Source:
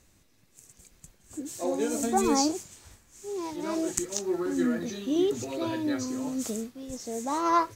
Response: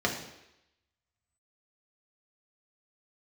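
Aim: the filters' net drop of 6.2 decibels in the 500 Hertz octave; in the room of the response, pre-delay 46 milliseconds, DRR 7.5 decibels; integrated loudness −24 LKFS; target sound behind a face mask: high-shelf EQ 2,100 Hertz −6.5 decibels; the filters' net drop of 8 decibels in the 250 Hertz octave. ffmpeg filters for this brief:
-filter_complex "[0:a]equalizer=frequency=250:width_type=o:gain=-8.5,equalizer=frequency=500:width_type=o:gain=-4.5,asplit=2[link_01][link_02];[1:a]atrim=start_sample=2205,adelay=46[link_03];[link_02][link_03]afir=irnorm=-1:irlink=0,volume=-18dB[link_04];[link_01][link_04]amix=inputs=2:normalize=0,highshelf=frequency=2100:gain=-6.5,volume=10.5dB"

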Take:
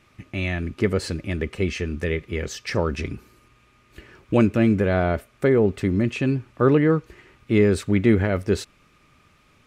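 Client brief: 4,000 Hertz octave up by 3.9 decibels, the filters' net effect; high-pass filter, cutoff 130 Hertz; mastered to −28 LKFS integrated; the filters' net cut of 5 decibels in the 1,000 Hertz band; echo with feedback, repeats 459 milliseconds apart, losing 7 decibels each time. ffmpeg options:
ffmpeg -i in.wav -af "highpass=130,equalizer=frequency=1000:width_type=o:gain=-8,equalizer=frequency=4000:width_type=o:gain=5.5,aecho=1:1:459|918|1377|1836|2295:0.447|0.201|0.0905|0.0407|0.0183,volume=-4.5dB" out.wav

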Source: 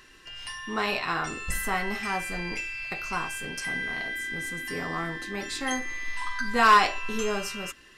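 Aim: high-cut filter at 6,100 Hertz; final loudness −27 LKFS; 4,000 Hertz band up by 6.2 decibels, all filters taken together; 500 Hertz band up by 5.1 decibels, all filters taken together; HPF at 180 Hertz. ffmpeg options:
ffmpeg -i in.wav -af "highpass=180,lowpass=6100,equalizer=frequency=500:width_type=o:gain=6.5,equalizer=frequency=4000:width_type=o:gain=9,volume=-1.5dB" out.wav

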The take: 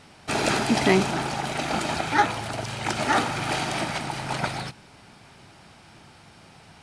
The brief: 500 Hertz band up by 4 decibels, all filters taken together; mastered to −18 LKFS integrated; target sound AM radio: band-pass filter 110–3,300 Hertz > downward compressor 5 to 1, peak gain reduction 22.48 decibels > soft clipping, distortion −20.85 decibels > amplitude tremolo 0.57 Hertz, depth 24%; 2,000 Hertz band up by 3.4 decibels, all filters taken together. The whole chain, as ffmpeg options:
ffmpeg -i in.wav -af "highpass=110,lowpass=3300,equalizer=frequency=500:width_type=o:gain=5.5,equalizer=frequency=2000:width_type=o:gain=4.5,acompressor=threshold=-37dB:ratio=5,asoftclip=threshold=-28dB,tremolo=f=0.57:d=0.24,volume=23.5dB" out.wav

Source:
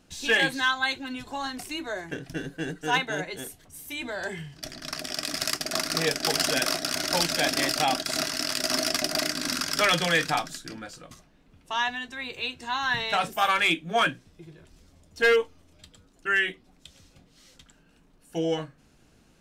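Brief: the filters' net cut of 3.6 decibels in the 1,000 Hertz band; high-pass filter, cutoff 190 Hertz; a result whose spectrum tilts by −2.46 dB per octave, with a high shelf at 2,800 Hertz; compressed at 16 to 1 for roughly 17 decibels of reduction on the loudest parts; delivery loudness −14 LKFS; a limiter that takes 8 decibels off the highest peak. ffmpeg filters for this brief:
ffmpeg -i in.wav -af "highpass=190,equalizer=frequency=1000:width_type=o:gain=-6,highshelf=frequency=2800:gain=6,acompressor=threshold=-35dB:ratio=16,volume=25dB,alimiter=limit=-2dB:level=0:latency=1" out.wav

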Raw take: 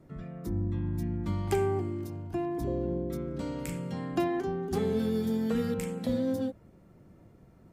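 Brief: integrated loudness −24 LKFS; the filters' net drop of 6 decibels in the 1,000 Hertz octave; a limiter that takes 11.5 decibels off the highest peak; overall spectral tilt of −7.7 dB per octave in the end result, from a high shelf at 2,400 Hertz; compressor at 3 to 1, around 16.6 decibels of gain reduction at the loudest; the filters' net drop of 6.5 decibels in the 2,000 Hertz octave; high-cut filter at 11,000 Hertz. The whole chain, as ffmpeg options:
ffmpeg -i in.wav -af "lowpass=11000,equalizer=frequency=1000:width_type=o:gain=-8.5,equalizer=frequency=2000:width_type=o:gain=-8.5,highshelf=frequency=2400:gain=6,acompressor=threshold=-49dB:ratio=3,volume=26dB,alimiter=limit=-15.5dB:level=0:latency=1" out.wav

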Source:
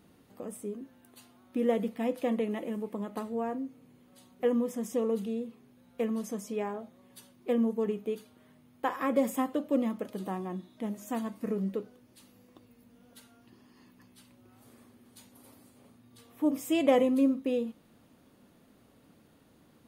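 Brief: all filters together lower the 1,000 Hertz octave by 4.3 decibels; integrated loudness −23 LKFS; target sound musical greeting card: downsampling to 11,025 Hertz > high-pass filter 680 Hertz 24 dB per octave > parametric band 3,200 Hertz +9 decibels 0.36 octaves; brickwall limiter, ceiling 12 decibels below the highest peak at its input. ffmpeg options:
ffmpeg -i in.wav -af "equalizer=frequency=1000:width_type=o:gain=-4.5,alimiter=limit=-24dB:level=0:latency=1,aresample=11025,aresample=44100,highpass=frequency=680:width=0.5412,highpass=frequency=680:width=1.3066,equalizer=frequency=3200:width_type=o:width=0.36:gain=9,volume=22.5dB" out.wav

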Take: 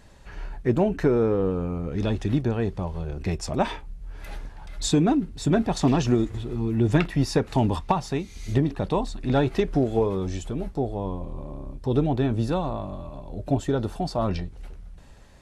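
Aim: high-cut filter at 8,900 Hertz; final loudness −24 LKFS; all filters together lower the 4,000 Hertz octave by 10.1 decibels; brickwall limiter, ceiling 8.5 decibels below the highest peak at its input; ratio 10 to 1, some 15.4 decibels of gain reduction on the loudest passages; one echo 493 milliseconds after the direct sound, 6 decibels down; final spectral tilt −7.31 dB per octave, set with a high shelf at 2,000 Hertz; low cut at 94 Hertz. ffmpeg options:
ffmpeg -i in.wav -af "highpass=94,lowpass=8900,highshelf=frequency=2000:gain=-6,equalizer=frequency=4000:width_type=o:gain=-6.5,acompressor=threshold=-32dB:ratio=10,alimiter=level_in=3.5dB:limit=-24dB:level=0:latency=1,volume=-3.5dB,aecho=1:1:493:0.501,volume=14.5dB" out.wav

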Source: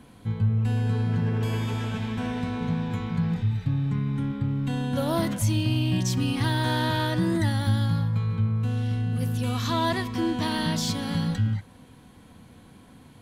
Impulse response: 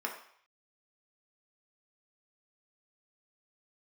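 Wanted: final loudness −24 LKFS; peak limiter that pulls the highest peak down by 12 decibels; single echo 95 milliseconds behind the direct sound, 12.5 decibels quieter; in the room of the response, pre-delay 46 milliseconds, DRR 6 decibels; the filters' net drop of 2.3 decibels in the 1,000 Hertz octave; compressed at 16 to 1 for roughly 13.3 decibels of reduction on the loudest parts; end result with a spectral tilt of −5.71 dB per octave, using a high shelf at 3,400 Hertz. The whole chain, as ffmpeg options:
-filter_complex "[0:a]equalizer=frequency=1000:width_type=o:gain=-3,highshelf=frequency=3400:gain=4,acompressor=threshold=-33dB:ratio=16,alimiter=level_in=12dB:limit=-24dB:level=0:latency=1,volume=-12dB,aecho=1:1:95:0.237,asplit=2[link_01][link_02];[1:a]atrim=start_sample=2205,adelay=46[link_03];[link_02][link_03]afir=irnorm=-1:irlink=0,volume=-10dB[link_04];[link_01][link_04]amix=inputs=2:normalize=0,volume=19.5dB"

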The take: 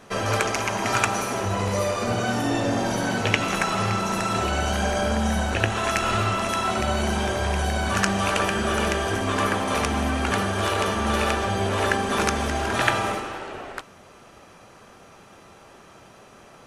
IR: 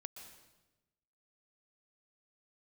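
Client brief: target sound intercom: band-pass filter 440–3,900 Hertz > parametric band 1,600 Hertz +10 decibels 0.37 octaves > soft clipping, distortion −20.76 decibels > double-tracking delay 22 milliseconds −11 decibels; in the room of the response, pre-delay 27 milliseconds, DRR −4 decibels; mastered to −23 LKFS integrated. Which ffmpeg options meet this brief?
-filter_complex "[0:a]asplit=2[link_01][link_02];[1:a]atrim=start_sample=2205,adelay=27[link_03];[link_02][link_03]afir=irnorm=-1:irlink=0,volume=8.5dB[link_04];[link_01][link_04]amix=inputs=2:normalize=0,highpass=440,lowpass=3900,equalizer=frequency=1600:width_type=o:width=0.37:gain=10,asoftclip=threshold=-4dB,asplit=2[link_05][link_06];[link_06]adelay=22,volume=-11dB[link_07];[link_05][link_07]amix=inputs=2:normalize=0,volume=-5.5dB"

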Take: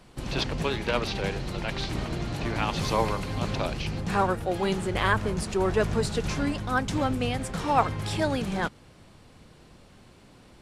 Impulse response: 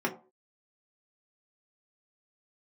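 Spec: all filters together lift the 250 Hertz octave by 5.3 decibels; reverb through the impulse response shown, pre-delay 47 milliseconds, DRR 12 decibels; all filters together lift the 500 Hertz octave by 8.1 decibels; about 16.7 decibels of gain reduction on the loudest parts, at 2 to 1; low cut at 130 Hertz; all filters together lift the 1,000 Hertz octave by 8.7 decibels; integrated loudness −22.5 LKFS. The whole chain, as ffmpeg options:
-filter_complex "[0:a]highpass=130,equalizer=frequency=250:width_type=o:gain=5,equalizer=frequency=500:width_type=o:gain=6.5,equalizer=frequency=1000:width_type=o:gain=8.5,acompressor=threshold=-41dB:ratio=2,asplit=2[link_01][link_02];[1:a]atrim=start_sample=2205,adelay=47[link_03];[link_02][link_03]afir=irnorm=-1:irlink=0,volume=-20.5dB[link_04];[link_01][link_04]amix=inputs=2:normalize=0,volume=12dB"

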